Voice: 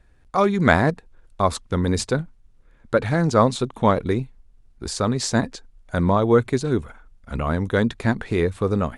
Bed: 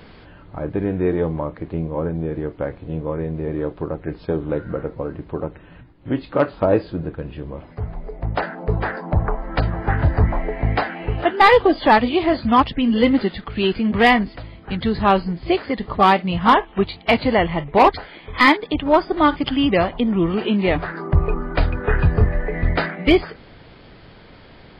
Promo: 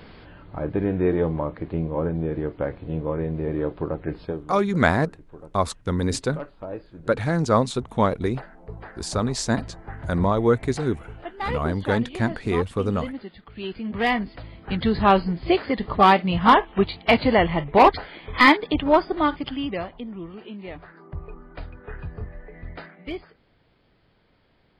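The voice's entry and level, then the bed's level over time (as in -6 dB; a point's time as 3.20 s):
4.15 s, -2.5 dB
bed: 4.20 s -1.5 dB
4.53 s -17.5 dB
13.25 s -17.5 dB
14.73 s -1 dB
18.84 s -1 dB
20.32 s -18.5 dB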